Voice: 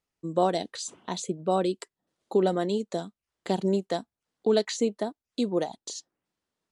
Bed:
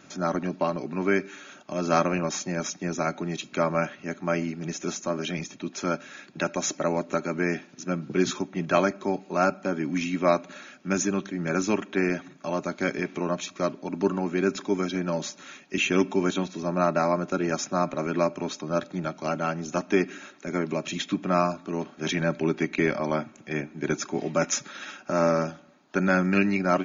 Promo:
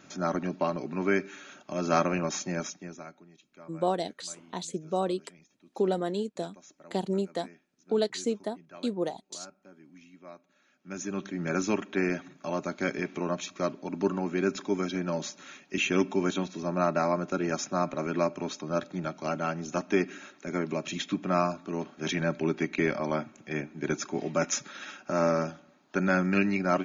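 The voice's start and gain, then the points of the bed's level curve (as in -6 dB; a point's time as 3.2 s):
3.45 s, -3.5 dB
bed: 2.57 s -2.5 dB
3.31 s -26 dB
10.54 s -26 dB
11.26 s -3 dB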